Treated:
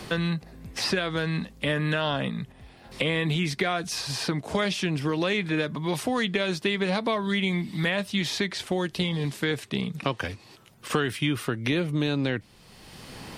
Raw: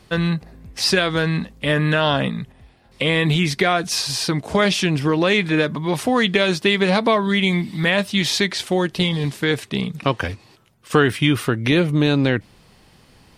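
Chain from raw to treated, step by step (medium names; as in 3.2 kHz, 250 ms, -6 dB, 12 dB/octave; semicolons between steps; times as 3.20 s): three bands compressed up and down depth 70%; trim -8.5 dB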